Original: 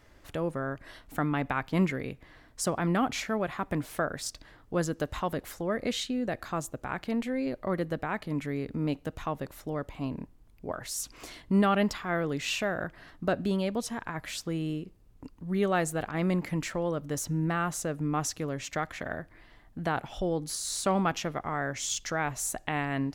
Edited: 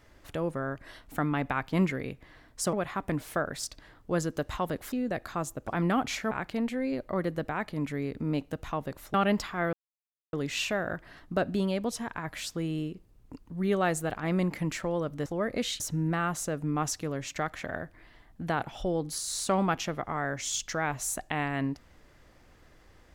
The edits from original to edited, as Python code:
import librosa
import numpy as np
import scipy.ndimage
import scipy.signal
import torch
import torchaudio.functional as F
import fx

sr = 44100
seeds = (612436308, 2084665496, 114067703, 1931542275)

y = fx.edit(x, sr, fx.move(start_s=2.73, length_s=0.63, to_s=6.85),
    fx.move(start_s=5.55, length_s=0.54, to_s=17.17),
    fx.cut(start_s=9.68, length_s=1.97),
    fx.insert_silence(at_s=12.24, length_s=0.6), tone=tone)